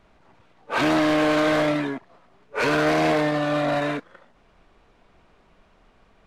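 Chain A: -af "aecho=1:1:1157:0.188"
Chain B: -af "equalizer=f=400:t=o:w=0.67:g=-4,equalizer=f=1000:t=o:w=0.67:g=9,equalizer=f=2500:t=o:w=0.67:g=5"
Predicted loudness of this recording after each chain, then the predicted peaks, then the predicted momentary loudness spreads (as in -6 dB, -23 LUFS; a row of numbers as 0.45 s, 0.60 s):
-22.5 LUFS, -20.0 LUFS; -14.5 dBFS, -7.5 dBFS; 18 LU, 11 LU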